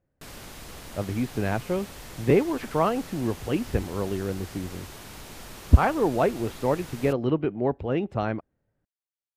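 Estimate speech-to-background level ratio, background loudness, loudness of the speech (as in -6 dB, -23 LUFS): 15.5 dB, -42.0 LUFS, -26.5 LUFS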